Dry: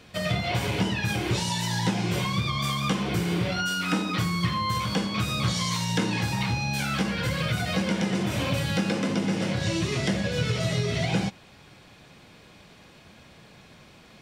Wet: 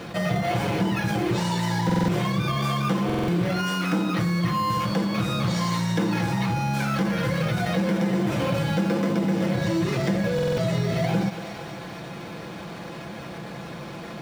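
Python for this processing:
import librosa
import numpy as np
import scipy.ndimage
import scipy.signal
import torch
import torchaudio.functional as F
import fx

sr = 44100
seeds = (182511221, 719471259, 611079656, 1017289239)

p1 = fx.sample_hold(x, sr, seeds[0], rate_hz=3900.0, jitter_pct=0)
p2 = x + (p1 * librosa.db_to_amplitude(-4.0))
p3 = fx.highpass(p2, sr, hz=140.0, slope=6)
p4 = fx.high_shelf(p3, sr, hz=2600.0, db=-7.5)
p5 = p4 + 0.47 * np.pad(p4, (int(5.9 * sr / 1000.0), 0))[:len(p4)]
p6 = fx.echo_thinned(p5, sr, ms=233, feedback_pct=61, hz=420.0, wet_db=-19.5)
p7 = fx.buffer_glitch(p6, sr, at_s=(1.85, 3.05, 10.34), block=2048, repeats=4)
p8 = fx.env_flatten(p7, sr, amount_pct=50)
y = p8 * librosa.db_to_amplitude(-3.5)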